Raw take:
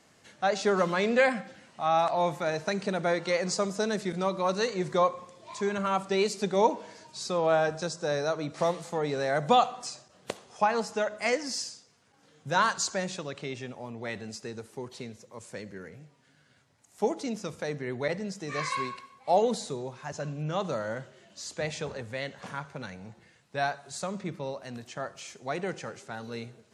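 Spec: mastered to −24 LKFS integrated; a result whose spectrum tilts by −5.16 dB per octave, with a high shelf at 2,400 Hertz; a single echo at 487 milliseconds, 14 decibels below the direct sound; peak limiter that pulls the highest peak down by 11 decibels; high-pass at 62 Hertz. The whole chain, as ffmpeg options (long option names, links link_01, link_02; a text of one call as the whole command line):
ffmpeg -i in.wav -af "highpass=62,highshelf=frequency=2400:gain=-6.5,alimiter=limit=-22dB:level=0:latency=1,aecho=1:1:487:0.2,volume=10.5dB" out.wav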